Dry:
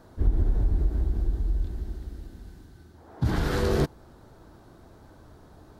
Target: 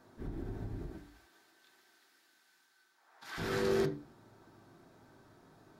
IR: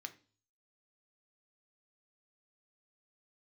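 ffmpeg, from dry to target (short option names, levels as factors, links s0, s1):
-filter_complex "[0:a]asplit=3[s0][s1][s2];[s0]afade=t=out:st=0.96:d=0.02[s3];[s1]highpass=1200,afade=t=in:st=0.96:d=0.02,afade=t=out:st=3.37:d=0.02[s4];[s2]afade=t=in:st=3.37:d=0.02[s5];[s3][s4][s5]amix=inputs=3:normalize=0[s6];[1:a]atrim=start_sample=2205,afade=t=out:st=0.34:d=0.01,atrim=end_sample=15435[s7];[s6][s7]afir=irnorm=-1:irlink=0,volume=0.841"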